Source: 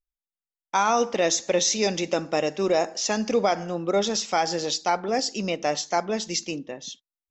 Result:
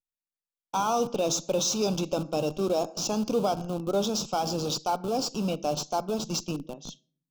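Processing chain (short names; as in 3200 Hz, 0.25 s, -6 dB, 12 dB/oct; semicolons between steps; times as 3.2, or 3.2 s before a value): reverb RT60 0.50 s, pre-delay 7 ms, DRR 16 dB; in parallel at -5 dB: Schmitt trigger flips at -27 dBFS; on the sum: Butterworth band-stop 1900 Hz, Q 1.4; resonant low shelf 120 Hz -8 dB, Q 3; gain -6.5 dB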